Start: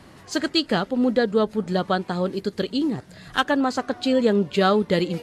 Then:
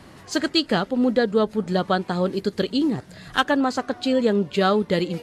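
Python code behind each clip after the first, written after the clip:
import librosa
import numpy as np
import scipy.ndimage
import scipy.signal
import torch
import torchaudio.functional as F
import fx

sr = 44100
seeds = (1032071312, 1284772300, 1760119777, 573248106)

y = fx.rider(x, sr, range_db=3, speed_s=2.0)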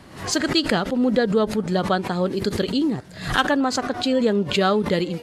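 y = fx.pre_swell(x, sr, db_per_s=100.0)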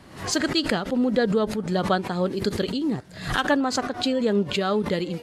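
y = fx.am_noise(x, sr, seeds[0], hz=5.7, depth_pct=55)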